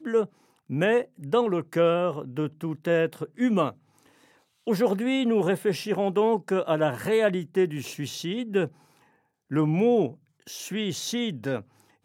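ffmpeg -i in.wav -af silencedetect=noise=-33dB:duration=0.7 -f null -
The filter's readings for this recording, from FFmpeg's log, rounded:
silence_start: 3.70
silence_end: 4.67 | silence_duration: 0.97
silence_start: 8.67
silence_end: 9.51 | silence_duration: 0.84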